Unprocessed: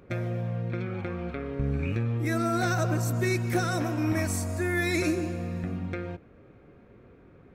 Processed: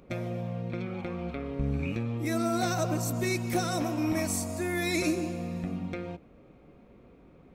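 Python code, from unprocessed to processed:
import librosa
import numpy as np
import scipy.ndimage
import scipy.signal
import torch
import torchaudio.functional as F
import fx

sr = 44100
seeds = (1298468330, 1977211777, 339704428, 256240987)

y = fx.graphic_eq_15(x, sr, hz=(100, 400, 1600), db=(-11, -5, -10))
y = F.gain(torch.from_numpy(y), 2.0).numpy()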